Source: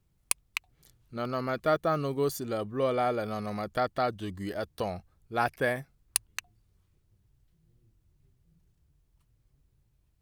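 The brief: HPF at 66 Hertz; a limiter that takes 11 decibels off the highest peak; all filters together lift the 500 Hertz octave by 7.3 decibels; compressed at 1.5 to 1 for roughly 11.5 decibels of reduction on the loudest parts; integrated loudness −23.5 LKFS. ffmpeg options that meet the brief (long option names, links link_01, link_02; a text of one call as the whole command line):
ffmpeg -i in.wav -af "highpass=66,equalizer=frequency=500:width_type=o:gain=9,acompressor=threshold=-50dB:ratio=1.5,volume=15.5dB,alimiter=limit=-12dB:level=0:latency=1" out.wav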